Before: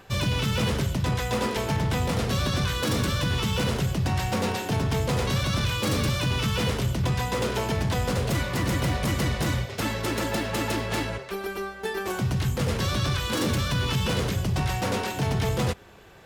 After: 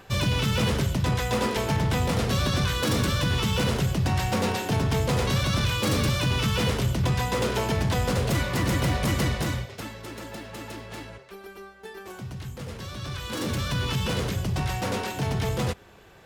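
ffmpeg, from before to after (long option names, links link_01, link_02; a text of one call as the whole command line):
ffmpeg -i in.wav -af "volume=10.5dB,afade=type=out:start_time=9.22:duration=0.69:silence=0.251189,afade=type=in:start_time=12.95:duration=0.79:silence=0.334965" out.wav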